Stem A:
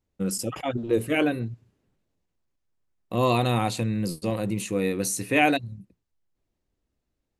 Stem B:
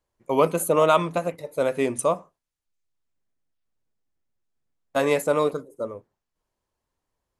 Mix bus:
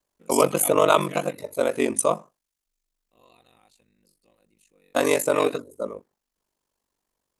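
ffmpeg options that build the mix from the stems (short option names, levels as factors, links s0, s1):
-filter_complex "[0:a]highpass=f=460:p=1,volume=0.891,afade=t=out:st=0.86:d=0.36:silence=0.298538[s0];[1:a]lowshelf=f=150:t=q:w=1.5:g=-6.5,volume=1.33,asplit=2[s1][s2];[s2]apad=whole_len=325925[s3];[s0][s3]sidechaingate=range=0.112:threshold=0.00398:ratio=16:detection=peak[s4];[s4][s1]amix=inputs=2:normalize=0,aeval=exprs='val(0)*sin(2*PI*24*n/s)':c=same,highshelf=f=3600:g=7.5"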